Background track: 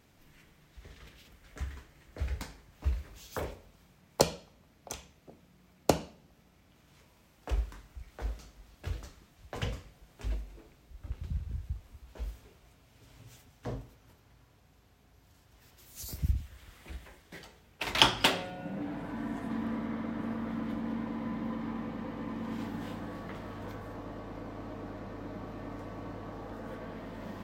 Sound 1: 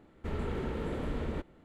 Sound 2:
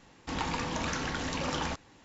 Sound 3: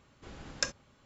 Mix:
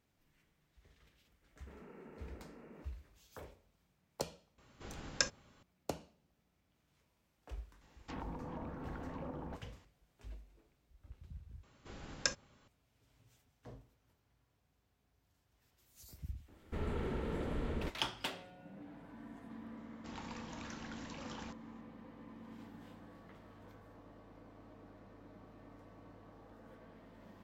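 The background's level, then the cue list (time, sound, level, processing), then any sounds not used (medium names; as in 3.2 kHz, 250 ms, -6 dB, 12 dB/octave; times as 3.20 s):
background track -15 dB
1.42 s: add 1 -17.5 dB + FFT band-pass 140–2900 Hz
4.58 s: add 3 -1 dB
7.81 s: add 2 -9 dB + low-pass that closes with the level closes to 600 Hz, closed at -28.5 dBFS
11.63 s: replace with 3 -2.5 dB
16.48 s: add 1 -3.5 dB
19.77 s: add 2 -16 dB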